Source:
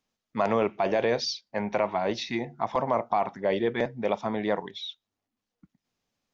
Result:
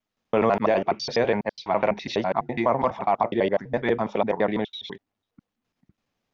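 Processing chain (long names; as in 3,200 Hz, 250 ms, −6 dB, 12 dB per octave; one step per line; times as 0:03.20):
slices reordered back to front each 83 ms, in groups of 4
bass and treble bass 0 dB, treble −8 dB
level +4 dB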